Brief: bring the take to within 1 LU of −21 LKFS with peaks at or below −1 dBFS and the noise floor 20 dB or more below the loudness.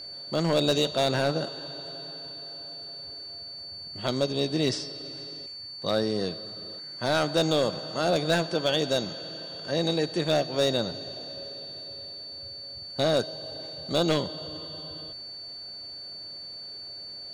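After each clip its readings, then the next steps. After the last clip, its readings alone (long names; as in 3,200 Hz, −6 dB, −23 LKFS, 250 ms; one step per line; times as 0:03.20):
share of clipped samples 0.6%; peaks flattened at −16.5 dBFS; interfering tone 4,500 Hz; level of the tone −38 dBFS; integrated loudness −29.5 LKFS; sample peak −16.5 dBFS; target loudness −21.0 LKFS
→ clipped peaks rebuilt −16.5 dBFS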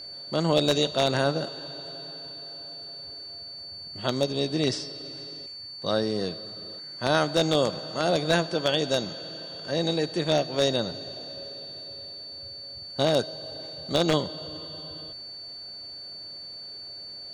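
share of clipped samples 0.0%; interfering tone 4,500 Hz; level of the tone −38 dBFS
→ notch filter 4,500 Hz, Q 30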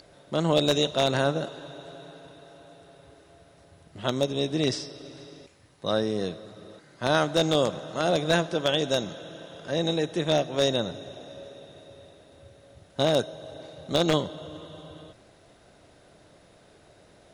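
interfering tone none found; integrated loudness −26.5 LKFS; sample peak −7.5 dBFS; target loudness −21.0 LKFS
→ level +5.5 dB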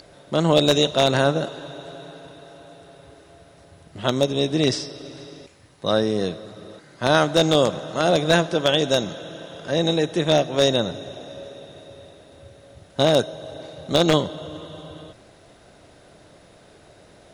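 integrated loudness −21.0 LKFS; sample peak −2.0 dBFS; background noise floor −51 dBFS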